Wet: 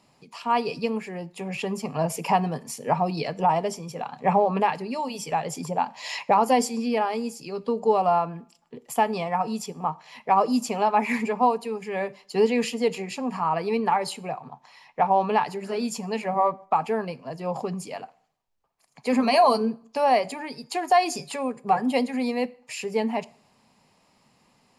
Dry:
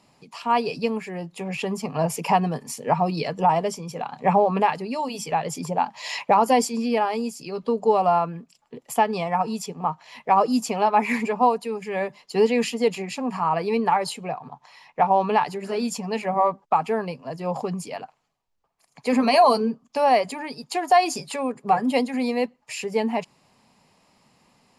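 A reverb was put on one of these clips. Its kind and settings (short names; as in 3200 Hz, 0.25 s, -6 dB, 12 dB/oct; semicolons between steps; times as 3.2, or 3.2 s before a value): plate-style reverb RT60 0.56 s, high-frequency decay 0.85×, DRR 17.5 dB; gain -2 dB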